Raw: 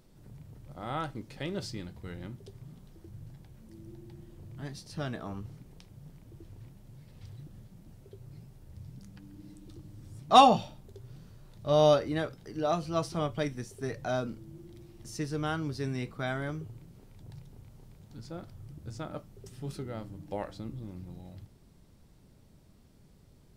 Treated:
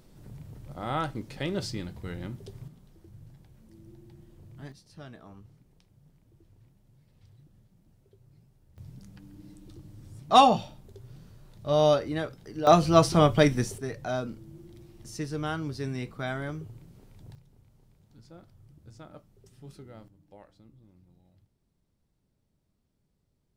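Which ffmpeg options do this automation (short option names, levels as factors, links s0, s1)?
-af "asetnsamples=n=441:p=0,asendcmd='2.68 volume volume -3dB;4.72 volume volume -10dB;8.78 volume volume 0.5dB;12.67 volume volume 11.5dB;13.78 volume volume 0.5dB;17.35 volume volume -8.5dB;20.08 volume volume -16dB',volume=1.68"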